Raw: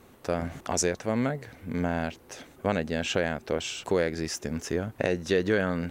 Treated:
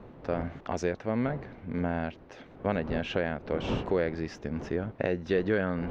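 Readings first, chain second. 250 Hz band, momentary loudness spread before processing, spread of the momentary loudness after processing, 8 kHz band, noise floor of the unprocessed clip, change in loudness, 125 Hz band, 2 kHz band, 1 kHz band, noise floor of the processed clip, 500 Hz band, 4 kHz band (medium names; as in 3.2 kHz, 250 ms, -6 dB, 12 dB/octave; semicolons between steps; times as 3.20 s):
-1.5 dB, 7 LU, 8 LU, under -15 dB, -55 dBFS, -2.5 dB, -1.0 dB, -4.0 dB, -2.0 dB, -52 dBFS, -2.0 dB, -8.0 dB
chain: wind noise 460 Hz -40 dBFS; distance through air 260 m; trim -1.5 dB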